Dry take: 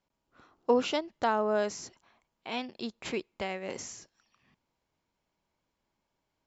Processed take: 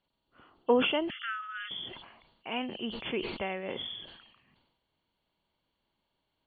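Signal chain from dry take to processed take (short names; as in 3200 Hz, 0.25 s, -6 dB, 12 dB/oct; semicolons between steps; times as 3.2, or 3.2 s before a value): nonlinear frequency compression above 2700 Hz 4:1; 1.1–1.71 brick-wall FIR band-pass 1200–3500 Hz; sustainer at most 56 dB/s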